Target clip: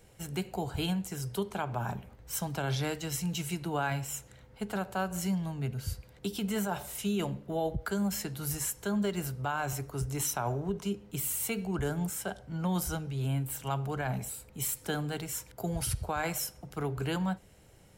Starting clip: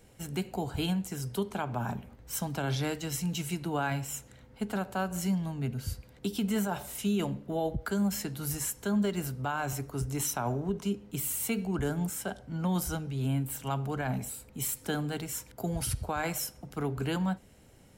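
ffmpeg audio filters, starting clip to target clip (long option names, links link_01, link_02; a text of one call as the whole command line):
ffmpeg -i in.wav -af "equalizer=frequency=250:width_type=o:width=0.38:gain=-8.5" out.wav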